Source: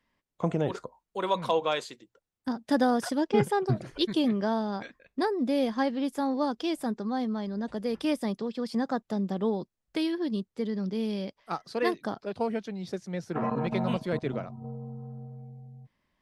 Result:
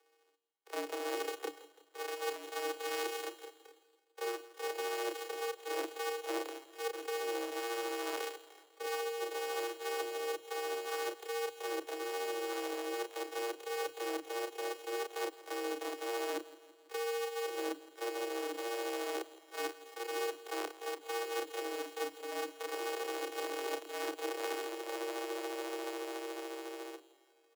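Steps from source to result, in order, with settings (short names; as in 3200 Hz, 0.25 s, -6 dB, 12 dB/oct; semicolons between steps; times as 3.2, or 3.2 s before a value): sample sorter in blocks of 128 samples; steep high-pass 180 Hz 96 dB/oct; reverse; compressor 12:1, threshold -40 dBFS, peak gain reduction 21.5 dB; reverse; granular stretch 1.7×, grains 0.143 s; frequency shift +120 Hz; feedback echo 0.166 s, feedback 57%, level -18 dB; gain +6 dB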